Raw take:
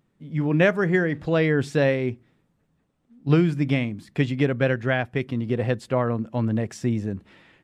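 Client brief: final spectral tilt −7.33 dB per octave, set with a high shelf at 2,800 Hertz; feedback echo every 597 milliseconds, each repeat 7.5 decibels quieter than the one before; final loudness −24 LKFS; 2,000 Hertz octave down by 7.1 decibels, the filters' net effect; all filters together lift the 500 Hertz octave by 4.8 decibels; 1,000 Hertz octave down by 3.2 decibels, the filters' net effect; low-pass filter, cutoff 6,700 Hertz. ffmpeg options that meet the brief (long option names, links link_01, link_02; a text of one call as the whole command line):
ffmpeg -i in.wav -af "lowpass=6700,equalizer=frequency=500:width_type=o:gain=7.5,equalizer=frequency=1000:width_type=o:gain=-6,equalizer=frequency=2000:width_type=o:gain=-4.5,highshelf=frequency=2800:gain=-7.5,aecho=1:1:597|1194|1791|2388|2985:0.422|0.177|0.0744|0.0312|0.0131,volume=-3dB" out.wav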